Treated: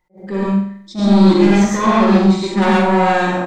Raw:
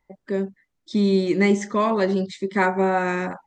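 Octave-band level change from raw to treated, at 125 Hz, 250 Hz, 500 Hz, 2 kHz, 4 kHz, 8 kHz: +10.5 dB, +10.5 dB, +5.0 dB, +5.0 dB, +9.5 dB, +9.0 dB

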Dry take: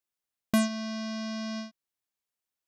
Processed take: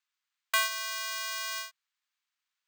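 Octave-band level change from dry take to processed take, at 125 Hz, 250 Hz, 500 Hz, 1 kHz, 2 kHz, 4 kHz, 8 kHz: under -40 dB, under -40 dB, -9.5 dB, +4.5 dB, +8.0 dB, +6.5 dB, +6.5 dB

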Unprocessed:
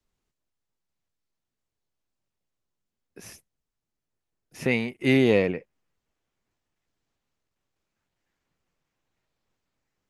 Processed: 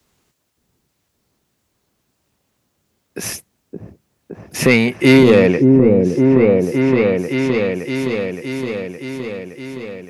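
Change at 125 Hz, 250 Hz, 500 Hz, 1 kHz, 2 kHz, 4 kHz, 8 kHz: +15.0 dB, +15.5 dB, +14.5 dB, +15.0 dB, +12.0 dB, +12.0 dB, +19.5 dB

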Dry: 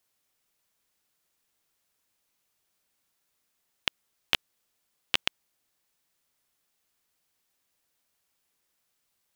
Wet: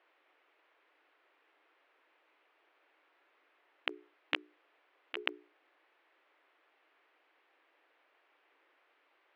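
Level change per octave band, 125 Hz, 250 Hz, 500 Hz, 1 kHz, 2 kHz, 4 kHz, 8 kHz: under -40 dB, -1.5 dB, -0.5 dB, -5.0 dB, -5.0 dB, -11.0 dB, under -25 dB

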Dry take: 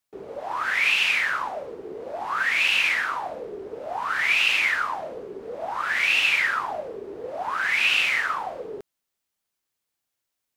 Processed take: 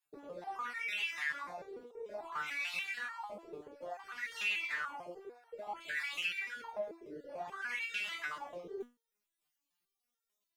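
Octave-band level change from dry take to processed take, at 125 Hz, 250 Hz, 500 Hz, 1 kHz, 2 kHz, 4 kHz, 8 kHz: no reading, -10.5 dB, -11.5 dB, -15.5 dB, -16.0 dB, -17.0 dB, -15.5 dB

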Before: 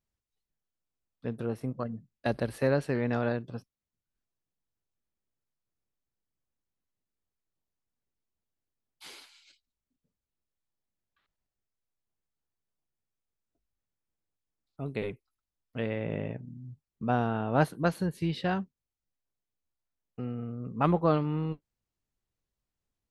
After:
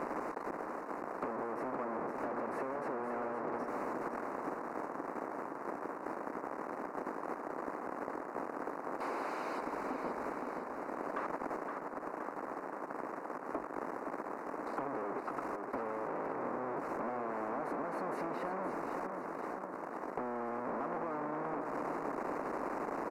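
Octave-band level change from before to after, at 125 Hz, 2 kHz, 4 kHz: -20.5 dB, -2.5 dB, -13.0 dB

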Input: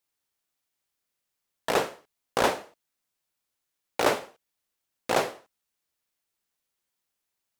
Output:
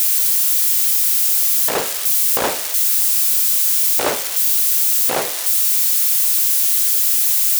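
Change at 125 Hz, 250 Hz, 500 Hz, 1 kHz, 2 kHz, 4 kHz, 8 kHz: no reading, +3.0 dB, +3.0 dB, +3.5 dB, +6.5 dB, +15.5 dB, +27.0 dB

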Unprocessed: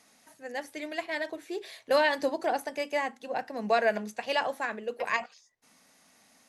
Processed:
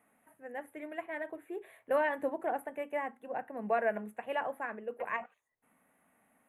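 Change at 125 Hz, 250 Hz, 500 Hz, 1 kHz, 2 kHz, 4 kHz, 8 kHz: no reading, -5.0 dB, -5.0 dB, -5.0 dB, -7.0 dB, under -15 dB, under -10 dB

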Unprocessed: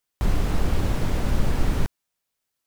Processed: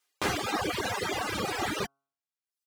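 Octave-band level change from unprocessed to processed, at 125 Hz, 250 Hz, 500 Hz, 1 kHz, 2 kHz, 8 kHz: -16.0 dB, -6.5 dB, 0.0 dB, +3.5 dB, +5.0 dB, +3.0 dB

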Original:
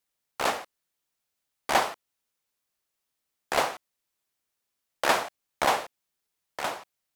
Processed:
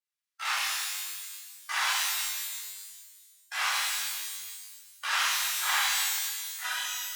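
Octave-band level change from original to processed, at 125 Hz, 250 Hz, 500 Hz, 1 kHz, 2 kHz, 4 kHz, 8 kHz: under -40 dB, under -40 dB, -23.0 dB, -5.5 dB, +3.0 dB, +6.5 dB, +9.5 dB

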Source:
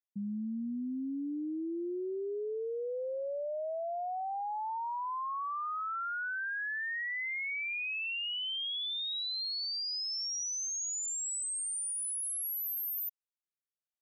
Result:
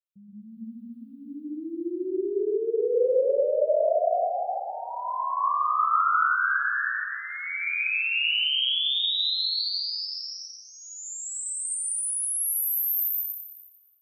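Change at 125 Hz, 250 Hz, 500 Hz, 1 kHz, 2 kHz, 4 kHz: no reading, +1.5 dB, +12.5 dB, +10.0 dB, +8.5 dB, +9.5 dB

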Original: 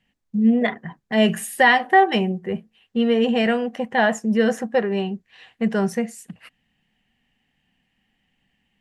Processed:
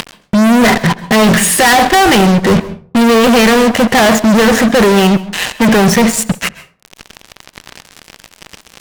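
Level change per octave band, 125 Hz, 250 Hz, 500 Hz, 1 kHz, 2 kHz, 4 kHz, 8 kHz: +15.5 dB, +12.0 dB, +10.5 dB, +10.0 dB, +10.0 dB, +14.5 dB, +22.0 dB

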